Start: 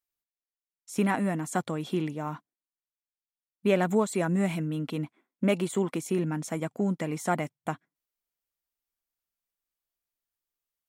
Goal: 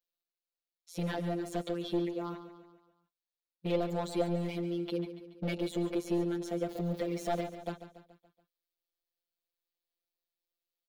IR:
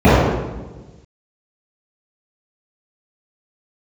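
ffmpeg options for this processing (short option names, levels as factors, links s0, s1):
-filter_complex "[0:a]asettb=1/sr,asplit=3[s0][s1][s2];[s0]atrim=end=6.694[s3];[s1]atrim=start=6.69:end=7.43,asetpts=PTS-STARTPTS,afade=t=in:d=0.004:c=qsin,afade=t=out:st=0.736:d=0.004:c=qsin,aeval=exprs='val(0)+0.5*0.0133*sgn(val(0))':c=same[s4];[s2]atrim=start=7.426[s5];[s3][s4]acrossfade=d=0.004:c1=hsin:c2=qsin[s6];[s6][s5]acrossfade=d=0.004:c1=qsin:c2=hsin,afftfilt=real='hypot(re,im)*cos(PI*b)':imag='0':win_size=1024:overlap=0.75,volume=20,asoftclip=hard,volume=0.0501,equalizer=f=125:t=o:w=1:g=-7,equalizer=f=250:t=o:w=1:g=-4,equalizer=f=500:t=o:w=1:g=9,equalizer=f=1000:t=o:w=1:g=-5,equalizer=f=2000:t=o:w=1:g=-4,equalizer=f=4000:t=o:w=1:g=9,equalizer=f=8000:t=o:w=1:g=-12,asplit=2[s7][s8];[s8]aecho=0:1:142|284|426|568|710:0.251|0.131|0.0679|0.0353|0.0184[s9];[s7][s9]amix=inputs=2:normalize=0"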